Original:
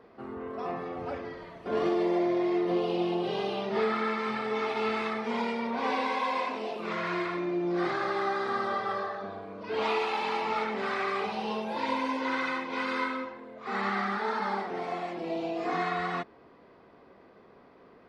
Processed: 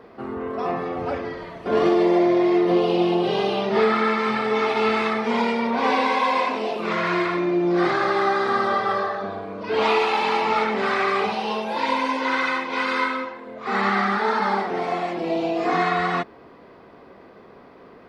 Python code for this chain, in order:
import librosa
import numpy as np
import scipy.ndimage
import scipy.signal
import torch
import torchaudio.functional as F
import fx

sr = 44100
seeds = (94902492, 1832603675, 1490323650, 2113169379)

y = fx.low_shelf(x, sr, hz=350.0, db=-7.0, at=(11.34, 13.47))
y = F.gain(torch.from_numpy(y), 9.0).numpy()